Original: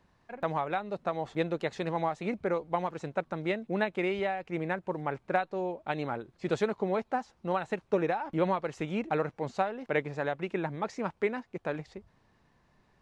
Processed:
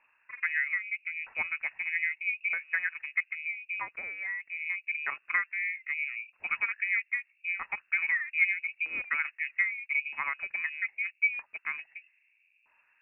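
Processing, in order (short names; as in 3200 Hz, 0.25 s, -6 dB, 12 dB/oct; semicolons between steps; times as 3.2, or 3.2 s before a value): 3.28–4.66 compressor 3:1, threshold -34 dBFS, peak gain reduction 8.5 dB; LFO low-pass saw down 0.79 Hz 310–1800 Hz; inverted band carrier 2700 Hz; gain -3.5 dB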